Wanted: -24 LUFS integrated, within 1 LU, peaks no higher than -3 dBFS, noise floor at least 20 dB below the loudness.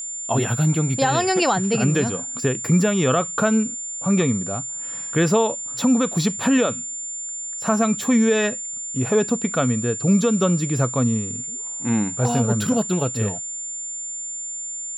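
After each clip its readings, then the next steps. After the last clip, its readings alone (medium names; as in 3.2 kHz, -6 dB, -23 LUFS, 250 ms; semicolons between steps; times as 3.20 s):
steady tone 7.2 kHz; tone level -28 dBFS; loudness -21.5 LUFS; peak level -8.5 dBFS; loudness target -24.0 LUFS
-> band-stop 7.2 kHz, Q 30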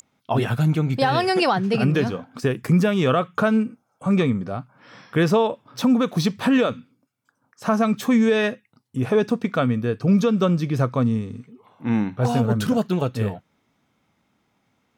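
steady tone not found; loudness -21.5 LUFS; peak level -9.5 dBFS; loudness target -24.0 LUFS
-> trim -2.5 dB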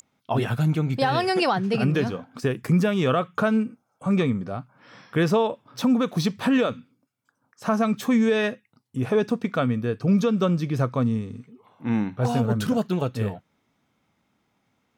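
loudness -24.0 LUFS; peak level -12.0 dBFS; noise floor -73 dBFS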